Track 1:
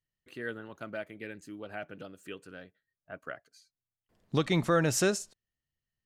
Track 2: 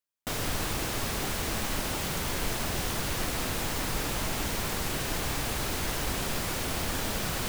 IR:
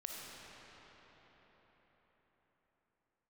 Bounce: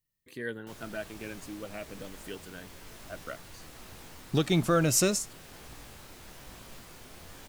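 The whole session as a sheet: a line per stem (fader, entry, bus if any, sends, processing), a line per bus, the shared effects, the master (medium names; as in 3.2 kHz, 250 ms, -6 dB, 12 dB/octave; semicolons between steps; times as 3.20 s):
+2.5 dB, 0.00 s, no send, treble shelf 9.8 kHz +11 dB; Shepard-style phaser falling 0.59 Hz
-14.0 dB, 0.40 s, no send, detune thickener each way 39 cents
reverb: none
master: none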